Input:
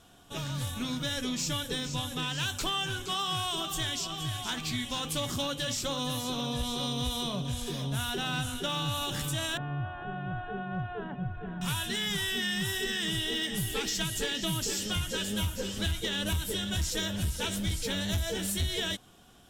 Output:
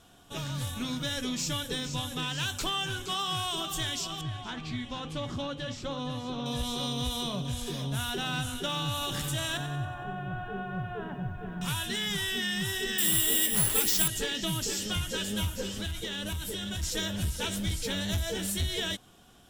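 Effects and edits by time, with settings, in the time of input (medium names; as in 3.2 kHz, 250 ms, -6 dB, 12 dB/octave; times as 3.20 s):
4.21–6.46 s: tape spacing loss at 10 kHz 21 dB
8.94–11.68 s: bit-crushed delay 92 ms, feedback 55%, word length 11-bit, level -10 dB
12.98–14.08 s: careless resampling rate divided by 4×, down none, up zero stuff
15.67–16.83 s: compression, threshold -31 dBFS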